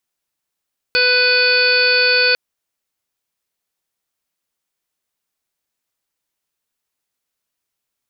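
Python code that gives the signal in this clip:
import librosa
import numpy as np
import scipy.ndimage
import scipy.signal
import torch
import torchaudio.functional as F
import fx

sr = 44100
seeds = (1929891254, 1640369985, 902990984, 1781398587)

y = fx.additive_steady(sr, length_s=1.4, hz=497.0, level_db=-19.5, upper_db=(-16, 3, -12, 3.0, -14, -8.5, -14.5, 3.0, -10))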